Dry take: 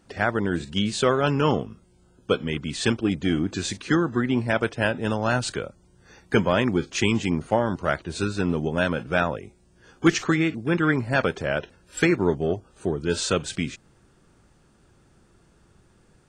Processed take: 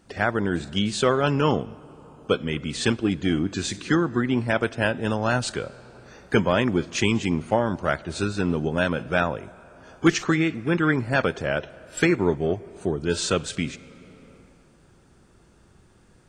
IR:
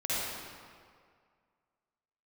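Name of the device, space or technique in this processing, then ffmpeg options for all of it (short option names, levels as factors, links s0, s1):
ducked reverb: -filter_complex "[0:a]asplit=3[s0][s1][s2];[1:a]atrim=start_sample=2205[s3];[s1][s3]afir=irnorm=-1:irlink=0[s4];[s2]apad=whole_len=717957[s5];[s4][s5]sidechaincompress=threshold=0.0251:ratio=12:attack=6.6:release=771,volume=0.224[s6];[s0][s6]amix=inputs=2:normalize=0"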